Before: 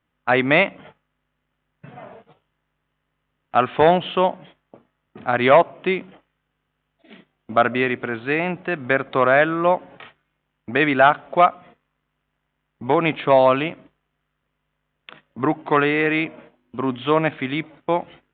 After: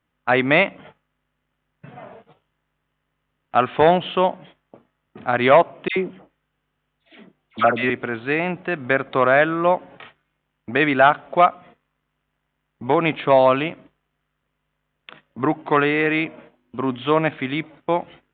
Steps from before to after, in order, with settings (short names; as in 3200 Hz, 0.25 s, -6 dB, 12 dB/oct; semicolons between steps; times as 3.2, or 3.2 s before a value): 5.88–7.9 dispersion lows, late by 85 ms, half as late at 1400 Hz